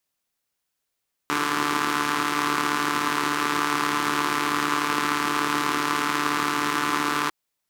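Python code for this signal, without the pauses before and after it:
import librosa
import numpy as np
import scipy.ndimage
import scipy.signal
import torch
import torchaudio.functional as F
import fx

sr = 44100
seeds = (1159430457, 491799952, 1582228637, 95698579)

y = fx.engine_four(sr, seeds[0], length_s=6.0, rpm=4400, resonances_hz=(330.0, 1100.0))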